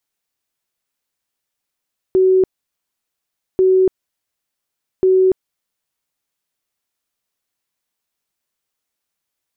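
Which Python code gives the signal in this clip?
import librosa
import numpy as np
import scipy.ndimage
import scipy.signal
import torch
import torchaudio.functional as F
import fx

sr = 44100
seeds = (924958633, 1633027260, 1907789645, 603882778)

y = fx.tone_burst(sr, hz=375.0, cycles=108, every_s=1.44, bursts=3, level_db=-9.0)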